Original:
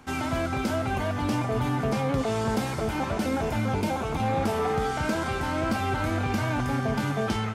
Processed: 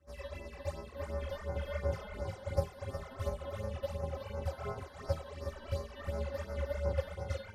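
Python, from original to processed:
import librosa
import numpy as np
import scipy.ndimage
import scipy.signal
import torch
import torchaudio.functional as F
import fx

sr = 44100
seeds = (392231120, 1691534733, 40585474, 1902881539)

y = fx.low_shelf(x, sr, hz=430.0, db=7.0)
y = fx.stiff_resonator(y, sr, f0_hz=240.0, decay_s=0.47, stiffness=0.002)
y = y + 10.0 ** (-7.0 / 20.0) * np.pad(y, (int(363 * sr / 1000.0), 0))[:len(y)]
y = y * np.sin(2.0 * np.pi * 320.0 * np.arange(len(y)) / sr)
y = fx.phaser_stages(y, sr, stages=12, low_hz=120.0, high_hz=3200.0, hz=2.8, feedback_pct=30)
y = fx.upward_expand(y, sr, threshold_db=-55.0, expansion=1.5)
y = y * 10.0 ** (9.5 / 20.0)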